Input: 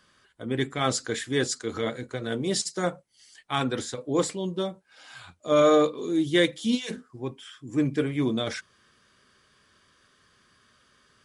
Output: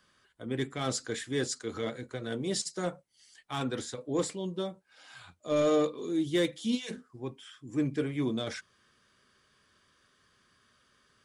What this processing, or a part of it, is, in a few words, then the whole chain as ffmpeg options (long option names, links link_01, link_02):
one-band saturation: -filter_complex "[0:a]acrossover=split=590|4200[link_01][link_02][link_03];[link_02]asoftclip=type=tanh:threshold=-27dB[link_04];[link_01][link_04][link_03]amix=inputs=3:normalize=0,volume=-5dB"